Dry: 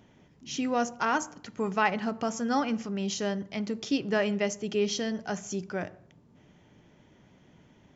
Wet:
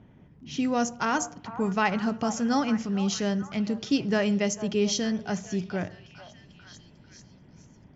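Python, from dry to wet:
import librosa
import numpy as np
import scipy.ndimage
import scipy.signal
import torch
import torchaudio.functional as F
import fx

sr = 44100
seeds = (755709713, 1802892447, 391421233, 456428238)

p1 = fx.env_lowpass(x, sr, base_hz=2000.0, full_db=-22.5)
p2 = fx.bass_treble(p1, sr, bass_db=8, treble_db=7)
y = p2 + fx.echo_stepped(p2, sr, ms=447, hz=850.0, octaves=0.7, feedback_pct=70, wet_db=-10.5, dry=0)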